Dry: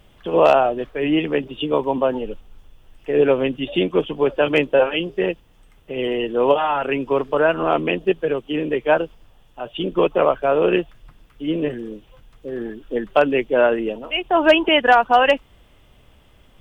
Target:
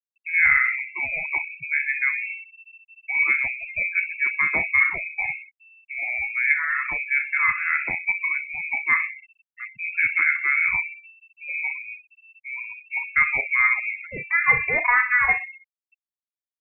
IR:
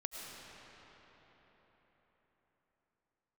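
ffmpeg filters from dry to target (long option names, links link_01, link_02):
-filter_complex "[0:a]equalizer=frequency=300:width_type=o:width=0.36:gain=-9.5,bandreject=frequency=760:width=12,asplit=2[link_01][link_02];[link_02]adelay=36,volume=-9dB[link_03];[link_01][link_03]amix=inputs=2:normalize=0,asplit=2[link_04][link_05];[link_05]adelay=63,lowpass=frequency=2000:poles=1,volume=-10dB,asplit=2[link_06][link_07];[link_07]adelay=63,lowpass=frequency=2000:poles=1,volume=0.55,asplit=2[link_08][link_09];[link_09]adelay=63,lowpass=frequency=2000:poles=1,volume=0.55,asplit=2[link_10][link_11];[link_11]adelay=63,lowpass=frequency=2000:poles=1,volume=0.55,asplit=2[link_12][link_13];[link_13]adelay=63,lowpass=frequency=2000:poles=1,volume=0.55,asplit=2[link_14][link_15];[link_15]adelay=63,lowpass=frequency=2000:poles=1,volume=0.55[link_16];[link_06][link_08][link_10][link_12][link_14][link_16]amix=inputs=6:normalize=0[link_17];[link_04][link_17]amix=inputs=2:normalize=0,lowpass=frequency=2300:width_type=q:width=0.5098,lowpass=frequency=2300:width_type=q:width=0.6013,lowpass=frequency=2300:width_type=q:width=0.9,lowpass=frequency=2300:width_type=q:width=2.563,afreqshift=-2700,adynamicequalizer=threshold=0.00562:dfrequency=180:dqfactor=1.1:tfrequency=180:tqfactor=1.1:attack=5:release=100:ratio=0.375:range=2.5:mode=cutabove:tftype=bell,afftfilt=real='re*gte(hypot(re,im),0.0562)':imag='im*gte(hypot(re,im),0.0562)':win_size=1024:overlap=0.75,volume=-4dB"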